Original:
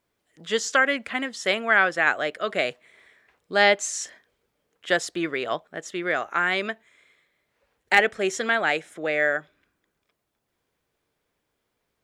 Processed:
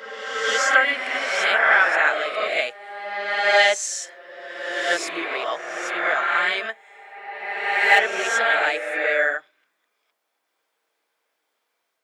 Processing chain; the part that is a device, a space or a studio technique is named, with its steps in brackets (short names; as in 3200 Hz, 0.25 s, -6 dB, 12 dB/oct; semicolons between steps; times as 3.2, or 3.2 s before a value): ghost voice (reverse; reverb RT60 2.0 s, pre-delay 5 ms, DRR -4.5 dB; reverse; HPF 590 Hz 12 dB/oct); gain -1 dB